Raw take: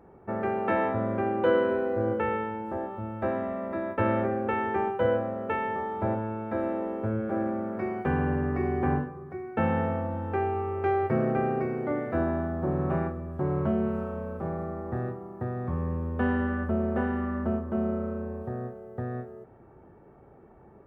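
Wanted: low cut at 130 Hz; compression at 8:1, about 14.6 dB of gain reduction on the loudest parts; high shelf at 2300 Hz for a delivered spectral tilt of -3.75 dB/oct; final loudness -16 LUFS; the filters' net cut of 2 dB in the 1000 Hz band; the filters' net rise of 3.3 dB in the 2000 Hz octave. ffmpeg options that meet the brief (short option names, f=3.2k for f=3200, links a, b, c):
-af "highpass=130,equalizer=f=1k:t=o:g=-3.5,equalizer=f=2k:t=o:g=8.5,highshelf=f=2.3k:g=-6.5,acompressor=threshold=-35dB:ratio=8,volume=23dB"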